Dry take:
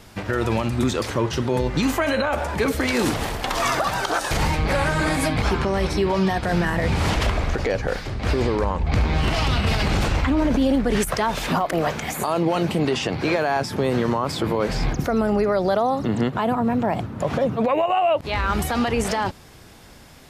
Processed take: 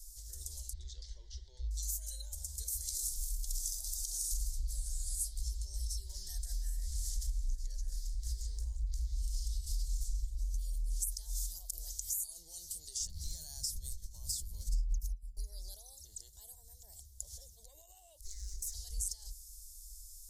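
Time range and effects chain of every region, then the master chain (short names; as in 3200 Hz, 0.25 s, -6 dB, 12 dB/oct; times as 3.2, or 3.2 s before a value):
0.73–1.71 LPF 3800 Hz 24 dB/oct + bell 2100 Hz +7 dB 1 oct
6.08–9.1 bell 1700 Hz +10 dB 0.78 oct + added noise brown -51 dBFS
13–15.37 resonant low shelf 290 Hz +11.5 dB, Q 3 + negative-ratio compressor -13 dBFS, ratio -0.5 + hard clip -5 dBFS
18.24–18.74 minimum comb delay 5.3 ms + EQ curve 160 Hz 0 dB, 250 Hz +14 dB, 360 Hz +15 dB, 630 Hz -3 dB, 910 Hz -12 dB, 2000 Hz +14 dB, 3100 Hz -4 dB, 6100 Hz +5 dB, 8700 Hz -2 dB, 14000 Hz -7 dB + compressor, threshold -23 dBFS
whole clip: inverse Chebyshev band-stop 110–2700 Hz, stop band 50 dB; compressor 3:1, threshold -39 dBFS; gain +4 dB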